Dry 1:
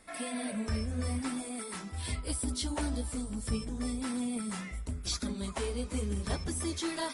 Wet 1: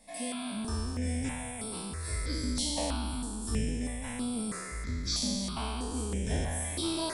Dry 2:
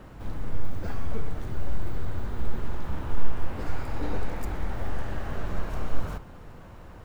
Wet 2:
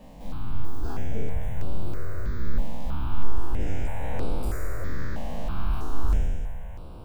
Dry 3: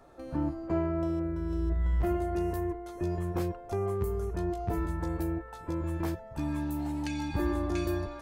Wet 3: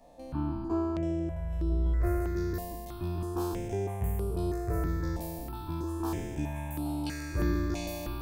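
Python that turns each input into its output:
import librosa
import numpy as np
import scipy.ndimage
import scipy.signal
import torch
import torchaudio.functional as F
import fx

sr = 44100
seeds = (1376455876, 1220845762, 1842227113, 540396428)

y = fx.spec_trails(x, sr, decay_s=1.98)
y = fx.phaser_held(y, sr, hz=3.1, low_hz=370.0, high_hz=6500.0)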